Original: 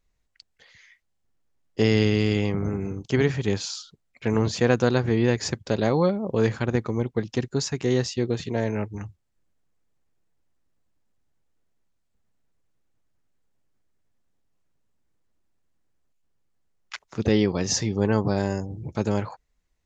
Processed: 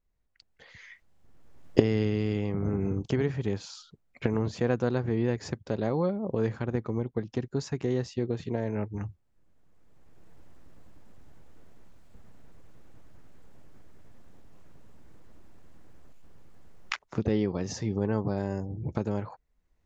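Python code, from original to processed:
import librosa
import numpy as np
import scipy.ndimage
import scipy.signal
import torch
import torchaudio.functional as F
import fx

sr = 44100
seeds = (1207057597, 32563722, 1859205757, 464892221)

y = fx.recorder_agc(x, sr, target_db=-12.0, rise_db_per_s=18.0, max_gain_db=30)
y = fx.high_shelf(y, sr, hz=2200.0, db=-11.0)
y = y * 10.0 ** (-6.0 / 20.0)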